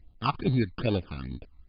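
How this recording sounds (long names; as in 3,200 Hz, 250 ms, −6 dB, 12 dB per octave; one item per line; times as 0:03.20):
aliases and images of a low sample rate 2,000 Hz, jitter 0%
phaser sweep stages 12, 2.4 Hz, lowest notch 520–1,900 Hz
MP3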